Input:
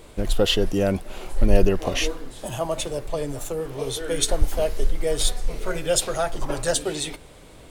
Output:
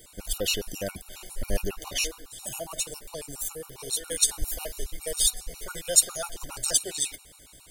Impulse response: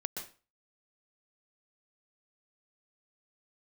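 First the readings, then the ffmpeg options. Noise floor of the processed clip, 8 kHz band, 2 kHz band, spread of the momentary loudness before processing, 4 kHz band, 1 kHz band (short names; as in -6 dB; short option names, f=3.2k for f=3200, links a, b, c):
-53 dBFS, +4.5 dB, -5.5 dB, 9 LU, -3.0 dB, -11.0 dB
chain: -af "aeval=exprs='val(0)+0.00355*(sin(2*PI*60*n/s)+sin(2*PI*2*60*n/s)/2+sin(2*PI*3*60*n/s)/3+sin(2*PI*4*60*n/s)/4+sin(2*PI*5*60*n/s)/5)':c=same,crystalizer=i=7.5:c=0,afftfilt=real='re*gt(sin(2*PI*7.3*pts/sr)*(1-2*mod(floor(b*sr/1024/740),2)),0)':imag='im*gt(sin(2*PI*7.3*pts/sr)*(1-2*mod(floor(b*sr/1024/740),2)),0)':win_size=1024:overlap=0.75,volume=-11dB"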